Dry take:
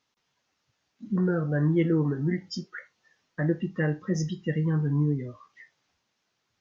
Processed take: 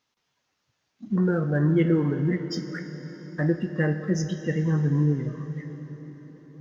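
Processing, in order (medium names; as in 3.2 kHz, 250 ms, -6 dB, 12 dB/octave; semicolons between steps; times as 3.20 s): in parallel at -10.5 dB: crossover distortion -44.5 dBFS; on the sum: reverberation RT60 5.4 s, pre-delay 46 ms, DRR 9 dB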